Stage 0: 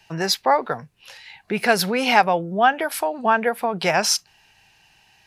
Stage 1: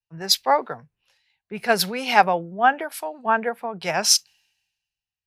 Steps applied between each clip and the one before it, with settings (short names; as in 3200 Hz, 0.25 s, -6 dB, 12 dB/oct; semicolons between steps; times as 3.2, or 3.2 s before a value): three-band expander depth 100%; gain -4.5 dB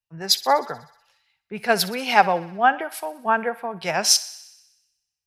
thinning echo 62 ms, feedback 67%, high-pass 530 Hz, level -17.5 dB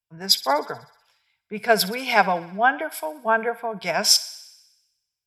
ripple EQ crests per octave 1.7, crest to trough 8 dB; gain -1 dB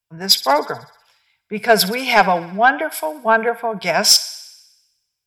soft clip -8 dBFS, distortion -18 dB; gain +6.5 dB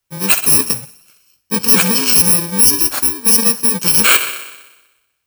FFT order left unsorted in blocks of 64 samples; maximiser +9 dB; gain -1 dB